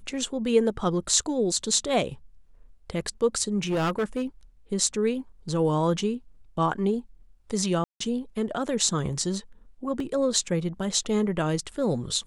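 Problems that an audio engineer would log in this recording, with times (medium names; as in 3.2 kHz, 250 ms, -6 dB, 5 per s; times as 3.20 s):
3.58–4.23 s: clipped -22 dBFS
7.84–8.00 s: dropout 164 ms
10.00 s: dropout 2.6 ms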